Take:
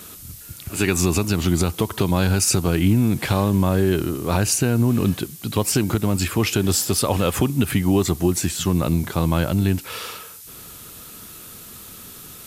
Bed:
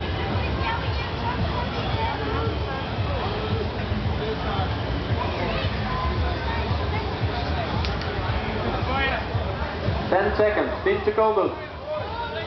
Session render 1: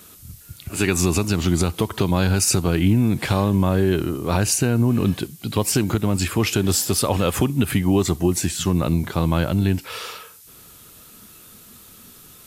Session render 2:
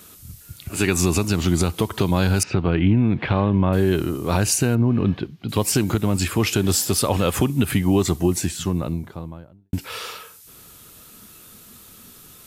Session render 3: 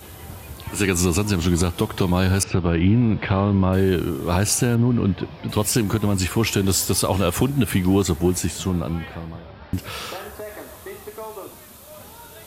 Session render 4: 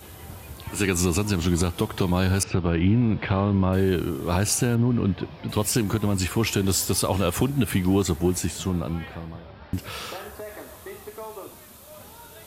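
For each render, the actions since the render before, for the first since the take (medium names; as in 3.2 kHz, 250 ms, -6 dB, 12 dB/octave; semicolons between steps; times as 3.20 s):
noise print and reduce 6 dB
2.43–3.73 s: low-pass 3.1 kHz 24 dB/octave; 4.75–5.49 s: distance through air 280 m; 8.16–9.73 s: studio fade out
add bed -15 dB
trim -3 dB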